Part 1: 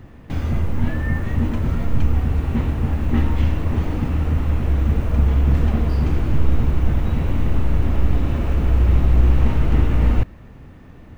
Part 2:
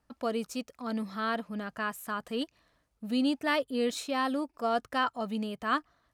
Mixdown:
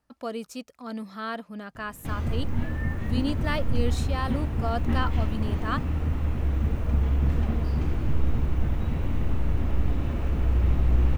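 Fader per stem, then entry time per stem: −7.0, −1.5 decibels; 1.75, 0.00 seconds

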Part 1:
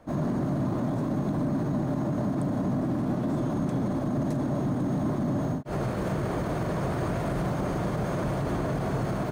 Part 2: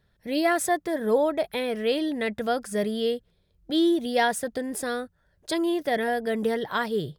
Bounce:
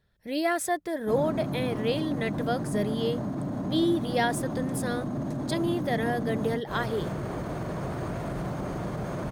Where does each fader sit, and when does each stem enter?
−4.0, −3.5 decibels; 1.00, 0.00 seconds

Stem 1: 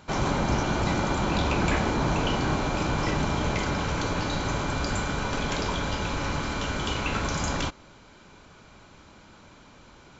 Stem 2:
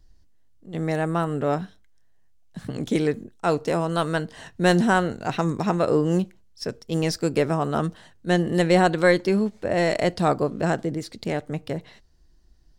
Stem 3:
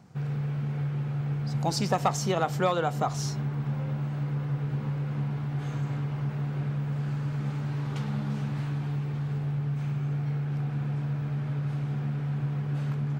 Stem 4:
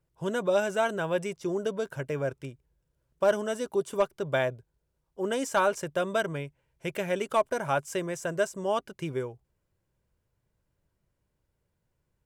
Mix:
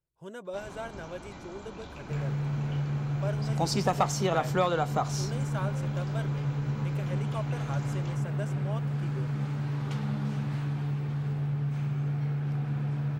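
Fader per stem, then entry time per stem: −19.5 dB, muted, −0.5 dB, −12.5 dB; 0.45 s, muted, 1.95 s, 0.00 s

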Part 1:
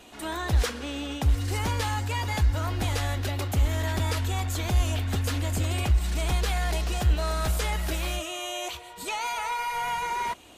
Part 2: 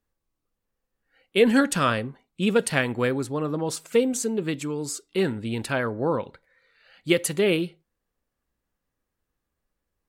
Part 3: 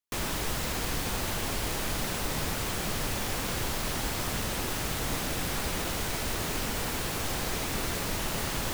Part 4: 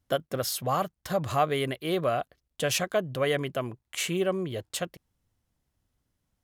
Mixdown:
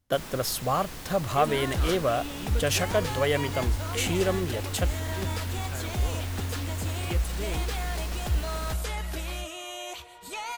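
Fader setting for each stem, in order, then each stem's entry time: −4.5, −16.5, −9.0, +1.0 decibels; 1.25, 0.00, 0.00, 0.00 seconds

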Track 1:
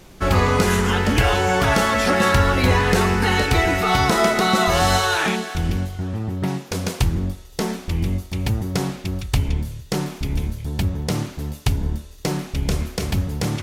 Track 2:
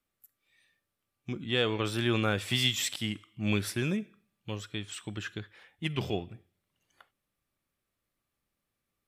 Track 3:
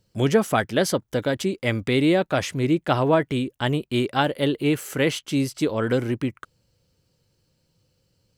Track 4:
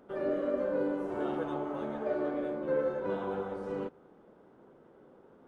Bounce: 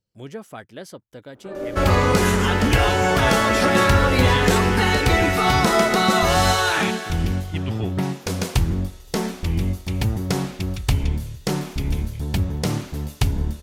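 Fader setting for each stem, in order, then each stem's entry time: 0.0, −1.0, −16.0, +2.0 decibels; 1.55, 1.70, 0.00, 1.35 seconds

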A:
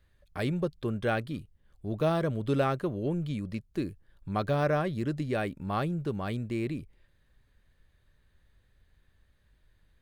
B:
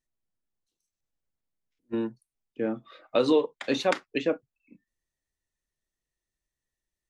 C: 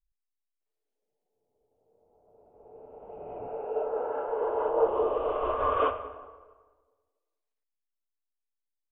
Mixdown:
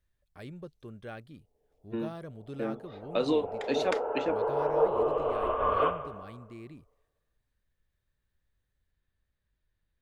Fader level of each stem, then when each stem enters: −14.0, −5.0, −0.5 decibels; 0.00, 0.00, 0.00 seconds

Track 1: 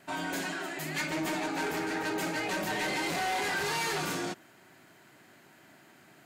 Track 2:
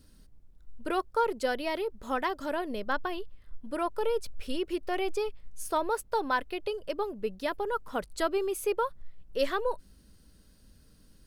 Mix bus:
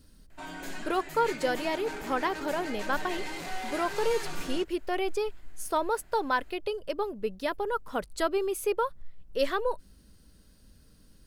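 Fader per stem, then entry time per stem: −6.5, +1.0 decibels; 0.30, 0.00 seconds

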